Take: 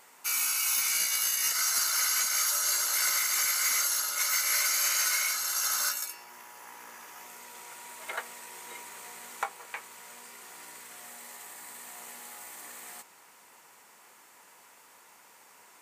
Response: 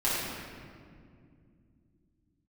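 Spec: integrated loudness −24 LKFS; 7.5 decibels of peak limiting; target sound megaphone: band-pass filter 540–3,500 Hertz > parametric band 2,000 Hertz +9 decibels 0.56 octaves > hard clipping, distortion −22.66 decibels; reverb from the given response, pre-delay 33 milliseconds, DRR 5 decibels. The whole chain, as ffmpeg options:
-filter_complex "[0:a]alimiter=limit=-22.5dB:level=0:latency=1,asplit=2[link_01][link_02];[1:a]atrim=start_sample=2205,adelay=33[link_03];[link_02][link_03]afir=irnorm=-1:irlink=0,volume=-16.5dB[link_04];[link_01][link_04]amix=inputs=2:normalize=0,highpass=540,lowpass=3500,equalizer=frequency=2000:width_type=o:width=0.56:gain=9,asoftclip=type=hard:threshold=-25.5dB,volume=11dB"

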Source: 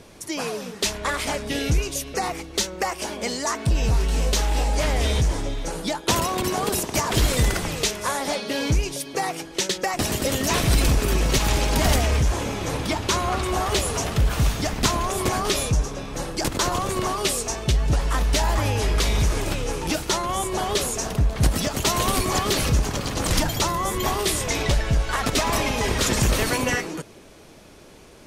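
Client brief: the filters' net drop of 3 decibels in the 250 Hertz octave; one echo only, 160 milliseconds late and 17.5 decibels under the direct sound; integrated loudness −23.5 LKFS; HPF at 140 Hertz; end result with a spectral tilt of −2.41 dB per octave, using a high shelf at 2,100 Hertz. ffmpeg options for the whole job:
ffmpeg -i in.wav -af "highpass=140,equalizer=frequency=250:width_type=o:gain=-3.5,highshelf=frequency=2100:gain=7,aecho=1:1:160:0.133,volume=-2.5dB" out.wav

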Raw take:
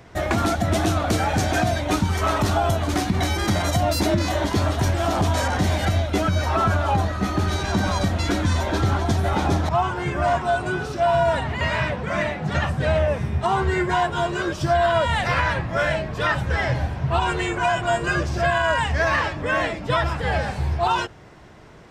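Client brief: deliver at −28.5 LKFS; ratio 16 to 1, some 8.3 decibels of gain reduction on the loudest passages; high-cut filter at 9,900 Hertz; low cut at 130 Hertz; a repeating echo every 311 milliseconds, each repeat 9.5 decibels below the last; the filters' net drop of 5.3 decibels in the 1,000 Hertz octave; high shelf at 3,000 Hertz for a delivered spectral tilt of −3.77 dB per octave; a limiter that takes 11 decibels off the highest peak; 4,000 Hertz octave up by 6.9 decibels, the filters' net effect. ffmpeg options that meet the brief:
ffmpeg -i in.wav -af "highpass=130,lowpass=9900,equalizer=frequency=1000:width_type=o:gain=-9,highshelf=frequency=3000:gain=6.5,equalizer=frequency=4000:width_type=o:gain=4.5,acompressor=threshold=-26dB:ratio=16,alimiter=level_in=1dB:limit=-24dB:level=0:latency=1,volume=-1dB,aecho=1:1:311|622|933|1244:0.335|0.111|0.0365|0.012,volume=4.5dB" out.wav

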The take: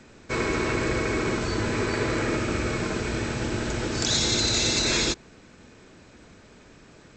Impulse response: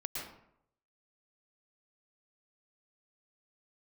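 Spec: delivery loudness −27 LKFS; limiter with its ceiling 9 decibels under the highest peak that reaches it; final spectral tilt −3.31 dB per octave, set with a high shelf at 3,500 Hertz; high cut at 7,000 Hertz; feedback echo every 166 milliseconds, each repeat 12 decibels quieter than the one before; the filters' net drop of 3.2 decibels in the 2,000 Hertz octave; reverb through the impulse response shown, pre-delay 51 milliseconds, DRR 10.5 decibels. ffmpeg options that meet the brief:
-filter_complex "[0:a]lowpass=7000,equalizer=frequency=2000:width_type=o:gain=-7,highshelf=frequency=3500:gain=9,alimiter=limit=-15dB:level=0:latency=1,aecho=1:1:166|332|498:0.251|0.0628|0.0157,asplit=2[link_01][link_02];[1:a]atrim=start_sample=2205,adelay=51[link_03];[link_02][link_03]afir=irnorm=-1:irlink=0,volume=-12dB[link_04];[link_01][link_04]amix=inputs=2:normalize=0,volume=-2dB"

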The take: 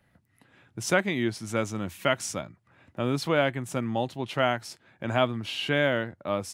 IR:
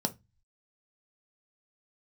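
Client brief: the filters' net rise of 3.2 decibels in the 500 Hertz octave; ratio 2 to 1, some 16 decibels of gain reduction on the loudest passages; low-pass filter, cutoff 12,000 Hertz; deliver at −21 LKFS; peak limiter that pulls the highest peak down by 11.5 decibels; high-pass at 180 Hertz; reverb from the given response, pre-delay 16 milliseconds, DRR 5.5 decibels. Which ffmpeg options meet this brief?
-filter_complex "[0:a]highpass=180,lowpass=12000,equalizer=frequency=500:width_type=o:gain=4,acompressor=threshold=-47dB:ratio=2,alimiter=level_in=9dB:limit=-24dB:level=0:latency=1,volume=-9dB,asplit=2[link_01][link_02];[1:a]atrim=start_sample=2205,adelay=16[link_03];[link_02][link_03]afir=irnorm=-1:irlink=0,volume=-10.5dB[link_04];[link_01][link_04]amix=inputs=2:normalize=0,volume=21.5dB"

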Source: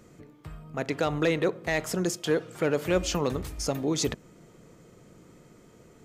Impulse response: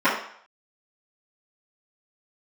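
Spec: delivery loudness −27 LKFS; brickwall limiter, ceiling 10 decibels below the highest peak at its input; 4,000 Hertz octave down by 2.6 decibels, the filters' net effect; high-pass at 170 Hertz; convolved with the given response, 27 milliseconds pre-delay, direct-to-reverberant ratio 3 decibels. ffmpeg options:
-filter_complex "[0:a]highpass=170,equalizer=frequency=4000:width_type=o:gain=-3.5,alimiter=limit=-24dB:level=0:latency=1,asplit=2[link_01][link_02];[1:a]atrim=start_sample=2205,adelay=27[link_03];[link_02][link_03]afir=irnorm=-1:irlink=0,volume=-23.5dB[link_04];[link_01][link_04]amix=inputs=2:normalize=0,volume=6.5dB"

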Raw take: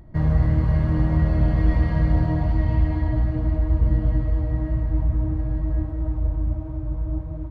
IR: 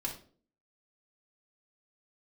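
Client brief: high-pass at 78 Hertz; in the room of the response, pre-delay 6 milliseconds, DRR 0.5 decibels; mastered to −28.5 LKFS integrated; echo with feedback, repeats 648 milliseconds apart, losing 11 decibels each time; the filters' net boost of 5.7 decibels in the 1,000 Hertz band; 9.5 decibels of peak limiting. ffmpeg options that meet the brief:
-filter_complex "[0:a]highpass=78,equalizer=frequency=1000:width_type=o:gain=7,alimiter=limit=-19.5dB:level=0:latency=1,aecho=1:1:648|1296|1944:0.282|0.0789|0.0221,asplit=2[link_01][link_02];[1:a]atrim=start_sample=2205,adelay=6[link_03];[link_02][link_03]afir=irnorm=-1:irlink=0,volume=-2dB[link_04];[link_01][link_04]amix=inputs=2:normalize=0,volume=-3.5dB"

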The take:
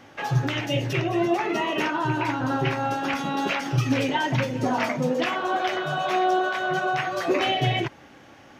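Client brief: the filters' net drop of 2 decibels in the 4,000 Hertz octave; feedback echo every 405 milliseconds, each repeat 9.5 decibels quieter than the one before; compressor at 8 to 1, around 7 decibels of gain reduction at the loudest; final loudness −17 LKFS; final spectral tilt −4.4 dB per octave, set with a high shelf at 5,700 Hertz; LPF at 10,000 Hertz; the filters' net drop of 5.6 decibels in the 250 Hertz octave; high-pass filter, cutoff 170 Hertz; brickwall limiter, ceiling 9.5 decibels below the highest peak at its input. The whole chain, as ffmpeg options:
ffmpeg -i in.wav -af "highpass=170,lowpass=10000,equalizer=frequency=250:width_type=o:gain=-7,equalizer=frequency=4000:width_type=o:gain=-5.5,highshelf=frequency=5700:gain=7,acompressor=threshold=-27dB:ratio=8,alimiter=level_in=2dB:limit=-24dB:level=0:latency=1,volume=-2dB,aecho=1:1:405|810|1215|1620:0.335|0.111|0.0365|0.012,volume=17dB" out.wav

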